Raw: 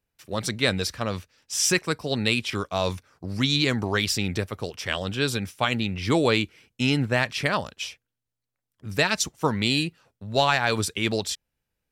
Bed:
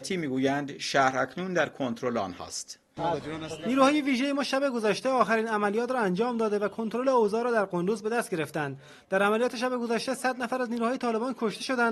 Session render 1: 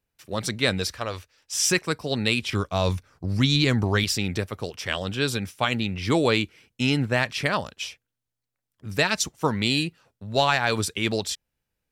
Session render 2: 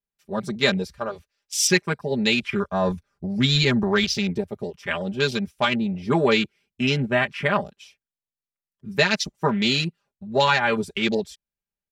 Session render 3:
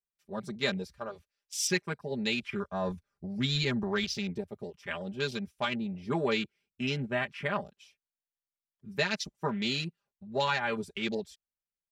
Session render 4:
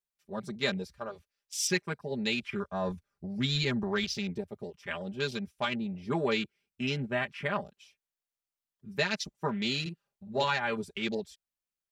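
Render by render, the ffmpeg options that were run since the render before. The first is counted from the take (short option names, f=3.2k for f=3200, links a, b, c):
-filter_complex "[0:a]asettb=1/sr,asplit=3[a][b][c];[a]atrim=end=0.934[d];[b]atrim=start=0.93:end=1.54,asetpts=PTS-STARTPTS,afade=t=in:d=0.004:c=qsin,afade=t=out:st=0.606:d=0.004:c=qsin,equalizer=f=180:w=1.5:g=-14.5[e];[c]atrim=start=1.536[f];[d][e]acrossfade=d=0.004:c1=hsin:c2=qsin[g];[g][f]acrossfade=d=0.004:c1=qsin:c2=hsin,asettb=1/sr,asplit=3[h][i][j];[h]atrim=end=2.424[k];[i]atrim=start=2.42:end=4.04,asetpts=PTS-STARTPTS,afade=t=in:d=0.004:c=qsin,afade=t=out:st=1.616:d=0.004:c=qsin,lowshelf=f=130:g=11[l];[j]atrim=start=4.036[m];[k][l]acrossfade=d=0.004:c1=hsin:c2=qsin[n];[n][m]acrossfade=d=0.004:c1=qsin:c2=hsin"
-af "afwtdn=0.0282,aecho=1:1:5:0.93"
-af "volume=-10dB"
-filter_complex "[0:a]asettb=1/sr,asplit=3[a][b][c];[a]atrim=end=9.814[d];[b]atrim=start=9.81:end=10.44,asetpts=PTS-STARTPTS,afade=t=in:d=0.004:c=qsin,afade=t=out:st=0.626:d=0.004:c=qsin,asplit=2[e][f];[f]adelay=47,volume=-5dB[g];[e][g]amix=inputs=2:normalize=0,atrim=end_sample=27783[h];[c]atrim=start=10.436[i];[d][h]acrossfade=d=0.004:c1=hsin:c2=qsin[j];[j][i]acrossfade=d=0.004:c1=qsin:c2=hsin"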